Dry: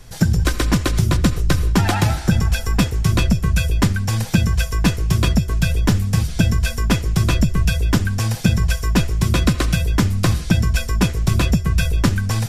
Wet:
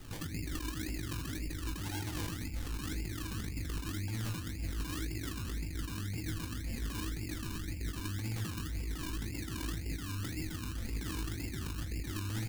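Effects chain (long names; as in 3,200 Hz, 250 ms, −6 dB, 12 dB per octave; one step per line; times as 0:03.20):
soft clipping −17.5 dBFS, distortion −9 dB
formant resonators in series u
single-tap delay 79 ms −9.5 dB
convolution reverb RT60 0.70 s, pre-delay 49 ms, DRR 10.5 dB
sample-and-hold swept by an LFO 26×, swing 60% 1.9 Hz
parametric band 84 Hz +8 dB 0.3 octaves
compressor whose output falls as the input rises −38 dBFS, ratio −1
brickwall limiter −32 dBFS, peak gain reduction 8.5 dB
high-shelf EQ 2,000 Hz +11 dB
double-tracking delay 19 ms −10.5 dB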